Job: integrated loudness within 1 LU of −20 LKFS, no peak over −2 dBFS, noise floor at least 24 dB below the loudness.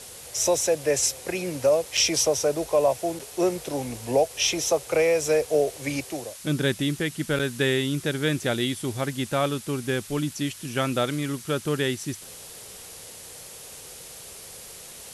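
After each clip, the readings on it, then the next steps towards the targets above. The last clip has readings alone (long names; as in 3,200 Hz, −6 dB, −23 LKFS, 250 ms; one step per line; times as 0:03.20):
number of dropouts 3; longest dropout 5.4 ms; background noise floor −43 dBFS; target noise floor −49 dBFS; integrated loudness −25.0 LKFS; sample peak −9.5 dBFS; target loudness −20.0 LKFS
→ repair the gap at 0:01.97/0:03.19/0:07.39, 5.4 ms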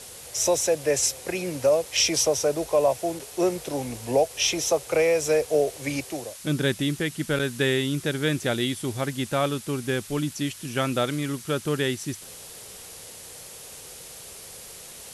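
number of dropouts 0; background noise floor −43 dBFS; target noise floor −49 dBFS
→ noise reduction from a noise print 6 dB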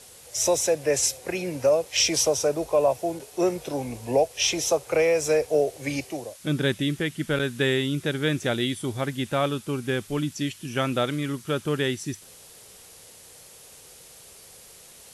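background noise floor −49 dBFS; integrated loudness −25.0 LKFS; sample peak −9.5 dBFS; target loudness −20.0 LKFS
→ level +5 dB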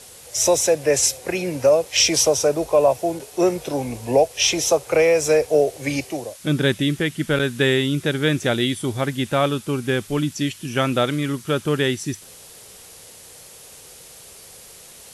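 integrated loudness −20.0 LKFS; sample peak −4.5 dBFS; background noise floor −44 dBFS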